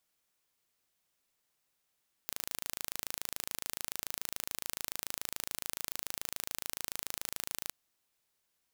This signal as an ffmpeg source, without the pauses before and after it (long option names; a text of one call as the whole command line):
ffmpeg -f lavfi -i "aevalsrc='0.355*eq(mod(n,1633),0)':duration=5.41:sample_rate=44100" out.wav